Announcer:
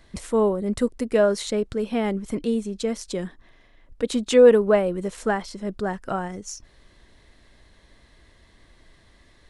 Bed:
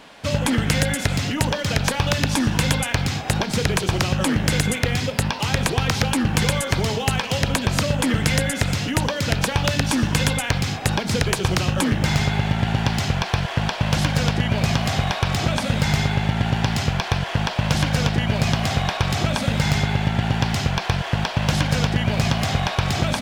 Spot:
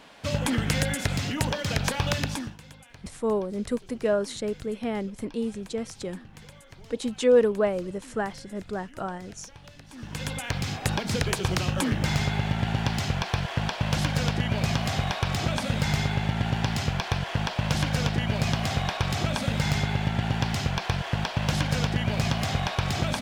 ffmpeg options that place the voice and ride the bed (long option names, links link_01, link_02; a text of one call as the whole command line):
ffmpeg -i stem1.wav -i stem2.wav -filter_complex "[0:a]adelay=2900,volume=-5.5dB[link_01];[1:a]volume=17dB,afade=type=out:start_time=2.14:duration=0.43:silence=0.0749894,afade=type=in:start_time=9.91:duration=0.85:silence=0.0749894[link_02];[link_01][link_02]amix=inputs=2:normalize=0" out.wav